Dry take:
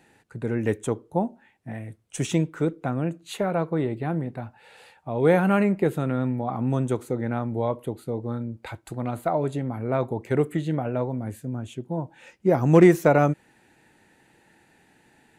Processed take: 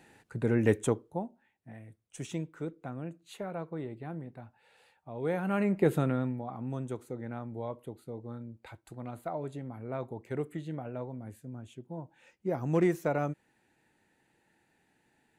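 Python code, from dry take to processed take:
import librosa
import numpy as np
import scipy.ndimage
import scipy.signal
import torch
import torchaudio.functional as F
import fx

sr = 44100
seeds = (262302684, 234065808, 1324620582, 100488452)

y = fx.gain(x, sr, db=fx.line((0.86, -0.5), (1.26, -13.0), (5.37, -13.0), (5.95, -0.5), (6.51, -12.0)))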